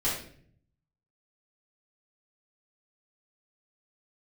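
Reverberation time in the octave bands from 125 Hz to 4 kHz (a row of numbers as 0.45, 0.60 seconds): 1.2, 0.90, 0.65, 0.45, 0.50, 0.45 seconds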